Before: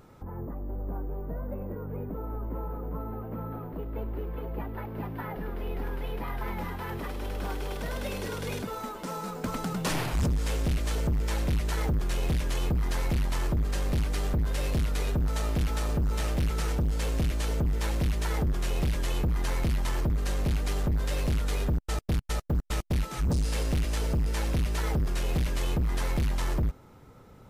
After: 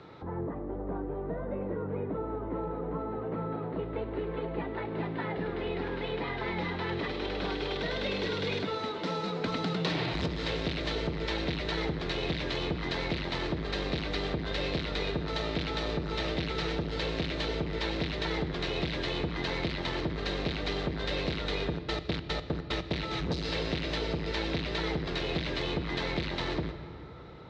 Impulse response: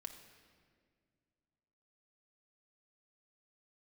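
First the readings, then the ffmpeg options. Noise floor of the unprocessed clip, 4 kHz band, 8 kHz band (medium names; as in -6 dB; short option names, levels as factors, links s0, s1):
-51 dBFS, +6.0 dB, -12.5 dB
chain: -filter_complex "[0:a]highpass=120,equalizer=f=230:t=q:w=4:g=-10,equalizer=f=330:t=q:w=4:g=5,equalizer=f=2000:t=q:w=4:g=4,equalizer=f=3900:t=q:w=4:g=9,lowpass=f=4400:w=0.5412,lowpass=f=4400:w=1.3066,asplit=2[s0][s1];[1:a]atrim=start_sample=2205[s2];[s1][s2]afir=irnorm=-1:irlink=0,volume=1.68[s3];[s0][s3]amix=inputs=2:normalize=0,acrossover=split=280|710|1900[s4][s5][s6][s7];[s4]acompressor=threshold=0.0224:ratio=4[s8];[s5]acompressor=threshold=0.0178:ratio=4[s9];[s6]acompressor=threshold=0.00631:ratio=4[s10];[s7]acompressor=threshold=0.0178:ratio=4[s11];[s8][s9][s10][s11]amix=inputs=4:normalize=0"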